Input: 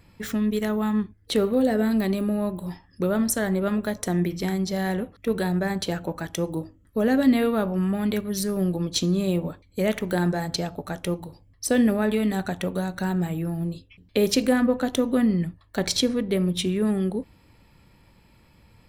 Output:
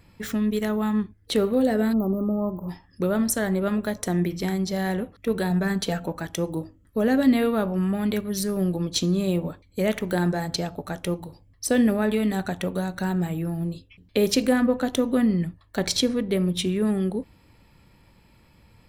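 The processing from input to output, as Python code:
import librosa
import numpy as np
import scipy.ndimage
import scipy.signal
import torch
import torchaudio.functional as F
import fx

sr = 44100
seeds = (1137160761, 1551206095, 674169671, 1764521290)

y = fx.brickwall_bandstop(x, sr, low_hz=1400.0, high_hz=12000.0, at=(1.92, 2.68), fade=0.02)
y = fx.comb(y, sr, ms=4.4, depth=0.57, at=(5.5, 6.08))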